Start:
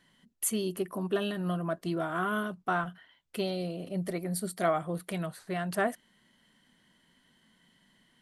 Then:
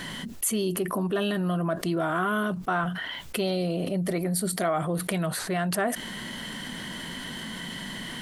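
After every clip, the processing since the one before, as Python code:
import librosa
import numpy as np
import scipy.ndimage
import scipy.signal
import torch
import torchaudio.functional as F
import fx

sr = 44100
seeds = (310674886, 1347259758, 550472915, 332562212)

y = fx.env_flatten(x, sr, amount_pct=70)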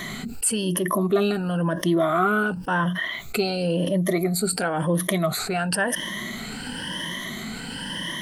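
y = fx.spec_ripple(x, sr, per_octave=1.2, drift_hz=0.96, depth_db=15)
y = F.gain(torch.from_numpy(y), 2.0).numpy()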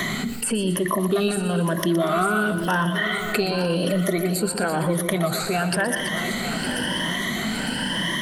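y = fx.reverse_delay_fb(x, sr, ms=454, feedback_pct=67, wet_db=-12.5)
y = fx.echo_feedback(y, sr, ms=119, feedback_pct=36, wet_db=-12.0)
y = fx.band_squash(y, sr, depth_pct=70)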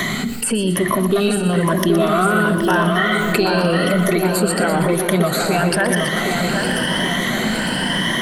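y = fx.echo_wet_lowpass(x, sr, ms=771, feedback_pct=58, hz=2500.0, wet_db=-5)
y = F.gain(torch.from_numpy(y), 4.5).numpy()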